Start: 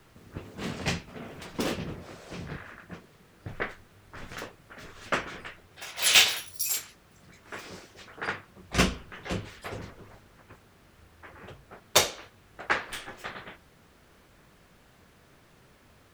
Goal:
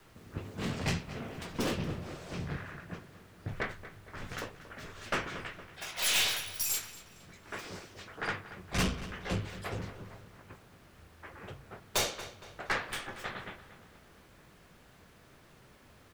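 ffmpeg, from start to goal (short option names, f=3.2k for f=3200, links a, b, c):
-filter_complex "[0:a]adynamicequalizer=threshold=0.00251:dfrequency=110:dqfactor=1.2:tfrequency=110:tqfactor=1.2:attack=5:release=100:ratio=0.375:range=2.5:mode=boostabove:tftype=bell,aeval=exprs='(tanh(17.8*val(0)+0.25)-tanh(0.25))/17.8':c=same,asplit=2[a][b];[b]adelay=232,lowpass=f=4.9k:p=1,volume=-14dB,asplit=2[c][d];[d]adelay=232,lowpass=f=4.9k:p=1,volume=0.51,asplit=2[e][f];[f]adelay=232,lowpass=f=4.9k:p=1,volume=0.51,asplit=2[g][h];[h]adelay=232,lowpass=f=4.9k:p=1,volume=0.51,asplit=2[i][j];[j]adelay=232,lowpass=f=4.9k:p=1,volume=0.51[k];[a][c][e][g][i][k]amix=inputs=6:normalize=0"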